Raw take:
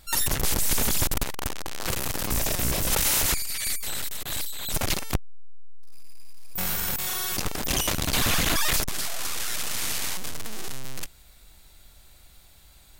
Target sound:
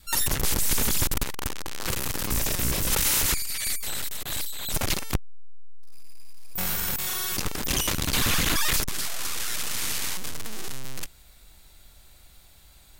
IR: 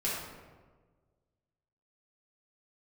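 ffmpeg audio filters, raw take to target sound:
-af "adynamicequalizer=threshold=0.00355:dfrequency=680:dqfactor=2.5:tfrequency=680:tqfactor=2.5:attack=5:release=100:ratio=0.375:range=3:mode=cutabove:tftype=bell"

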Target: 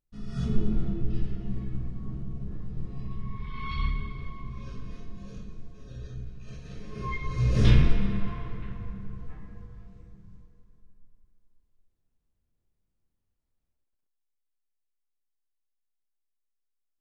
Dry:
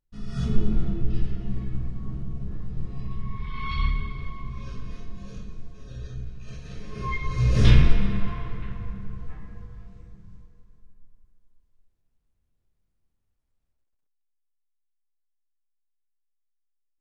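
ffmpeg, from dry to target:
-af "equalizer=f=280:t=o:w=2.5:g=3.5,volume=0.596"

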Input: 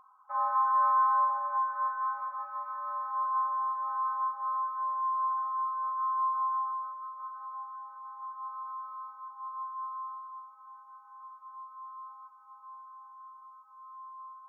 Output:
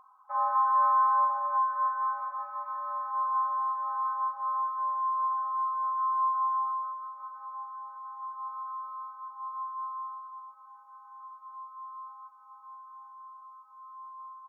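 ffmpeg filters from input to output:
-filter_complex "[0:a]equalizer=f=680:w=1.2:g=3.5,bandreject=f=1400:w=12,asplit=2[s0][s1];[s1]adelay=641.4,volume=0.126,highshelf=f=4000:g=-14.4[s2];[s0][s2]amix=inputs=2:normalize=0"

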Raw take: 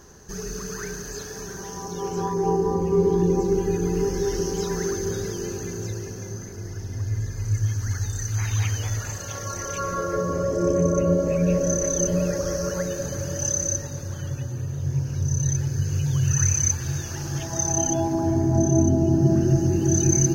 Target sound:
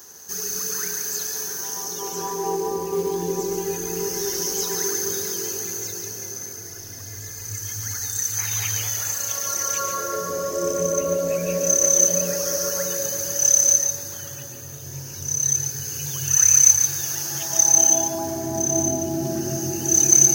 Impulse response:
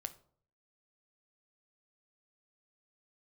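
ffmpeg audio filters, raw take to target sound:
-filter_complex "[0:a]aemphasis=mode=production:type=riaa,acrusher=bits=5:mode=log:mix=0:aa=0.000001,asplit=2[s0][s1];[1:a]atrim=start_sample=2205,adelay=141[s2];[s1][s2]afir=irnorm=-1:irlink=0,volume=0.668[s3];[s0][s3]amix=inputs=2:normalize=0,volume=0.891"

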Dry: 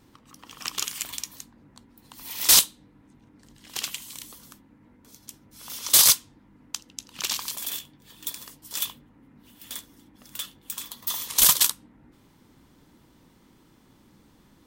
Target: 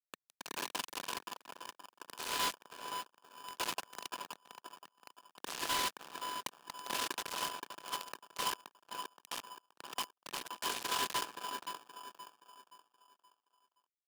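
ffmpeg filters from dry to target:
-filter_complex "[0:a]lowpass=f=5600:w=0.5412,lowpass=f=5600:w=1.3066,highshelf=f=3300:g=-10,alimiter=limit=0.0668:level=0:latency=1:release=460,acrusher=bits=4:dc=4:mix=0:aa=0.000001,asetrate=25476,aresample=44100,atempo=1.73107,volume=50.1,asoftclip=hard,volume=0.02,asuperstop=centerf=1000:order=8:qfactor=2.2,asplit=2[s0][s1];[s1]adelay=545,lowpass=f=870:p=1,volume=0.631,asplit=2[s2][s3];[s3]adelay=545,lowpass=f=870:p=1,volume=0.4,asplit=2[s4][s5];[s5]adelay=545,lowpass=f=870:p=1,volume=0.4,asplit=2[s6][s7];[s7]adelay=545,lowpass=f=870:p=1,volume=0.4,asplit=2[s8][s9];[s9]adelay=545,lowpass=f=870:p=1,volume=0.4[s10];[s2][s4][s6][s8][s10]amix=inputs=5:normalize=0[s11];[s0][s11]amix=inputs=2:normalize=0,asetrate=45938,aresample=44100,aeval=exprs='val(0)*sgn(sin(2*PI*1000*n/s))':c=same,volume=2.37"

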